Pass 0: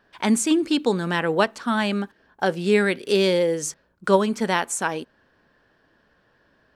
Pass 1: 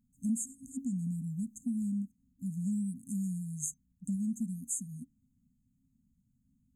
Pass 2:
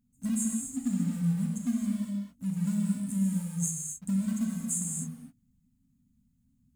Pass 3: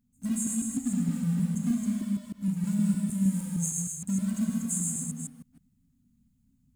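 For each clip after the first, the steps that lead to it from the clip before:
FFT band-reject 270–6300 Hz; compression 2.5:1, threshold -30 dBFS, peak gain reduction 10 dB; trim -3 dB
in parallel at -9 dB: companded quantiser 4-bit; on the sum: gated-style reverb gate 290 ms flat, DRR -1 dB
chunks repeated in reverse 155 ms, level -3 dB

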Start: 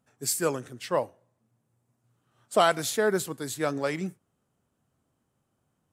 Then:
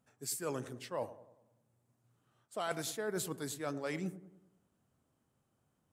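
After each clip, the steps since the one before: reverse; compression 6:1, threshold -32 dBFS, peak gain reduction 15 dB; reverse; feedback echo behind a low-pass 98 ms, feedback 49%, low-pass 860 Hz, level -13 dB; trim -3 dB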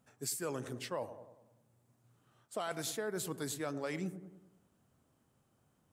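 compression 6:1, threshold -39 dBFS, peak gain reduction 8.5 dB; trim +4.5 dB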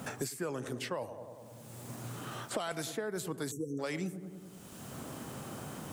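spectral selection erased 3.51–3.79 s, 520–5500 Hz; three bands compressed up and down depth 100%; trim +2.5 dB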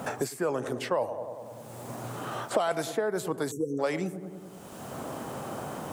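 peaking EQ 700 Hz +10 dB 2.1 oct; trim +1.5 dB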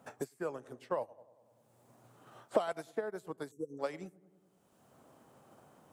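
upward expansion 2.5:1, over -37 dBFS; trim -1.5 dB

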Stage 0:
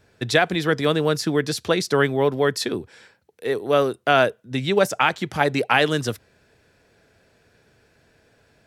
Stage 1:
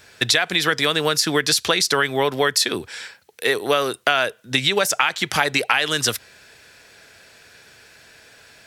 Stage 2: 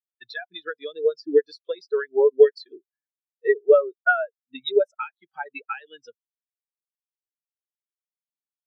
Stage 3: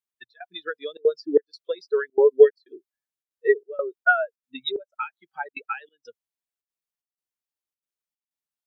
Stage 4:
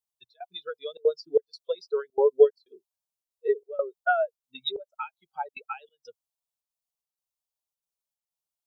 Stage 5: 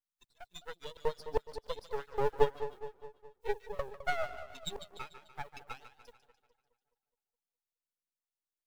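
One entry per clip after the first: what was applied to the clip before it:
tilt shelf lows -8.5 dB, about 880 Hz; in parallel at 0 dB: peak limiter -10 dBFS, peak gain reduction 11 dB; on the sum: compression 6:1, threshold -18 dBFS, peak gain reduction 11.5 dB; trim +3 dB
peaking EQ 130 Hz -5.5 dB 0.77 oct; spectral contrast expander 4:1; trim -2 dB
trance gate "xxx..xxxxxxx.x" 186 bpm -24 dB; trim +1 dB
static phaser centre 740 Hz, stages 4; trim +1.5 dB
spectral contrast reduction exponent 0.66; two-band feedback delay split 710 Hz, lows 209 ms, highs 147 ms, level -11.5 dB; half-wave rectifier; trim -5.5 dB

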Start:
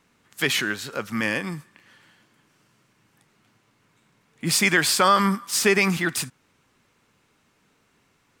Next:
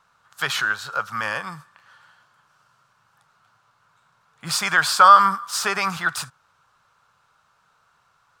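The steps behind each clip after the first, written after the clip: FFT filter 150 Hz 0 dB, 260 Hz -14 dB, 370 Hz -9 dB, 580 Hz +4 dB, 840 Hz +9 dB, 1.4 kHz +15 dB, 2 kHz -2 dB, 4 kHz +5 dB, 11 kHz -1 dB; trim -4.5 dB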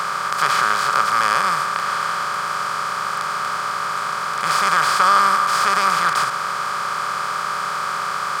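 spectral levelling over time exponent 0.2; trim -8 dB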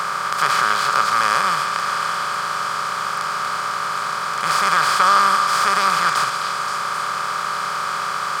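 repeats whose band climbs or falls 263 ms, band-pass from 3.5 kHz, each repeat 0.7 oct, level -4 dB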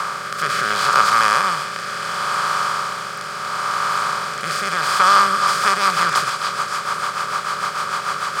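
rotary cabinet horn 0.7 Hz, later 6.7 Hz, at 4.92 s; trim +3.5 dB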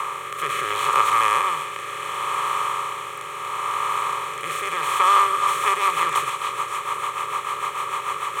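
static phaser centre 1 kHz, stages 8

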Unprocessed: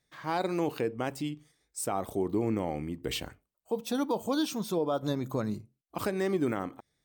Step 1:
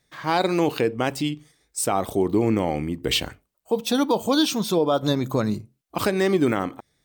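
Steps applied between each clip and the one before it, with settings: dynamic bell 3.6 kHz, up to +5 dB, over -51 dBFS, Q 0.9; trim +8.5 dB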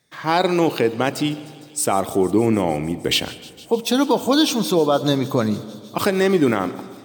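high-pass 100 Hz; feedback echo behind a high-pass 153 ms, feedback 84%, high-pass 3.7 kHz, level -17.5 dB; on a send at -16 dB: reverberation RT60 2.0 s, pre-delay 67 ms; on the sum: trim +3.5 dB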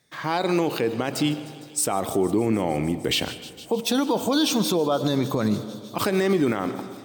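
peak limiter -13 dBFS, peak gain reduction 8.5 dB

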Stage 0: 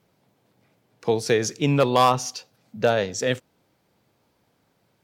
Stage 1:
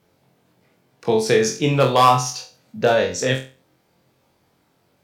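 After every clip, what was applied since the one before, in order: flutter echo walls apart 3.9 m, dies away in 0.34 s; trim +2 dB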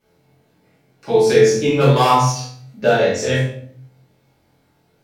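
simulated room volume 79 m³, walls mixed, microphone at 2.5 m; trim -9 dB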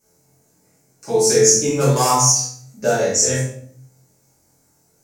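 resonant high shelf 4.8 kHz +12.5 dB, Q 3; trim -3 dB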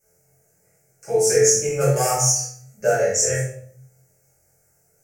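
static phaser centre 1 kHz, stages 6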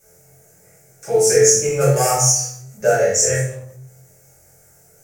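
companding laws mixed up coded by mu; trim +3 dB

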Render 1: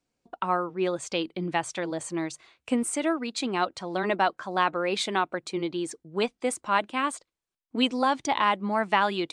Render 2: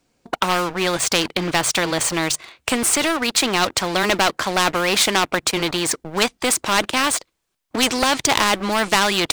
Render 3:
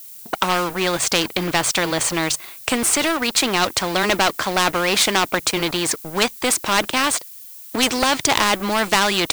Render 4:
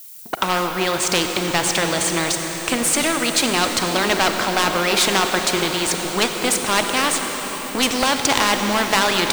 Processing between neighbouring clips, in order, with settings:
waveshaping leveller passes 2; spectrum-flattening compressor 2:1; trim +7.5 dB
added noise violet -39 dBFS
reverberation RT60 6.3 s, pre-delay 35 ms, DRR 3.5 dB; trim -1 dB

